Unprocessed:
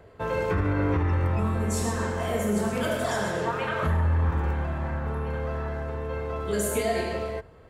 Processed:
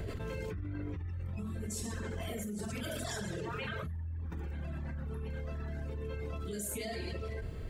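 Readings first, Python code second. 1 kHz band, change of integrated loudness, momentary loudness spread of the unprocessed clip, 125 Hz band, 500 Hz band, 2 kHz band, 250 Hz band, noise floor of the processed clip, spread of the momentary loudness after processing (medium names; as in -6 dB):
-17.5 dB, -12.0 dB, 7 LU, -11.5 dB, -14.5 dB, -12.5 dB, -11.5 dB, -40 dBFS, 3 LU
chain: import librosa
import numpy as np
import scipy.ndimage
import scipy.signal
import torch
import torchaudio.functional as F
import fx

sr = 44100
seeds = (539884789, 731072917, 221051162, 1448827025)

y = fx.low_shelf(x, sr, hz=210.0, db=-9.5)
y = fx.dereverb_blind(y, sr, rt60_s=1.7)
y = fx.tone_stack(y, sr, knobs='10-0-1')
y = fx.notch(y, sr, hz=500.0, q=12.0)
y = fx.env_flatten(y, sr, amount_pct=100)
y = y * 10.0 ** (2.0 / 20.0)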